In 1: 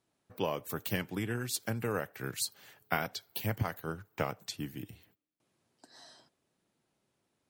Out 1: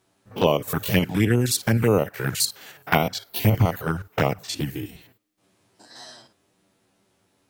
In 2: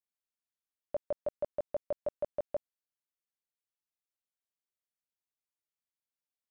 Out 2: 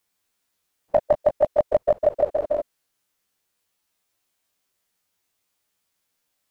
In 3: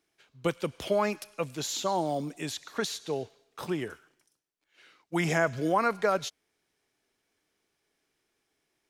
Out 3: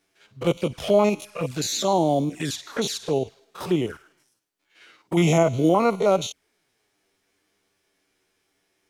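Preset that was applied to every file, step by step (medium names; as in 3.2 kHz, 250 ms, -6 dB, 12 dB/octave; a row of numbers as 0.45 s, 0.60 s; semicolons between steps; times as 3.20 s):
spectrogram pixelated in time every 50 ms; touch-sensitive flanger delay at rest 10.6 ms, full sweep at -30.5 dBFS; normalise loudness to -23 LUFS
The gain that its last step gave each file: +17.0 dB, +23.5 dB, +11.0 dB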